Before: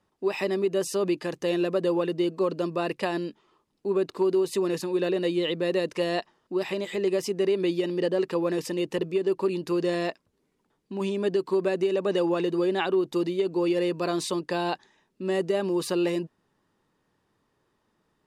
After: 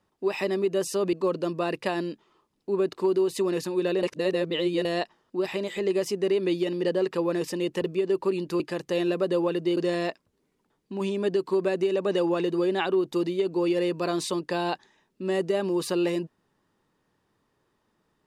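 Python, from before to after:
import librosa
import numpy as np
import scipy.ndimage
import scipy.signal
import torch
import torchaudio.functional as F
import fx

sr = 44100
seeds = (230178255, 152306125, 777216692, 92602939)

y = fx.edit(x, sr, fx.move(start_s=1.13, length_s=1.17, to_s=9.77),
    fx.reverse_span(start_s=5.2, length_s=0.82), tone=tone)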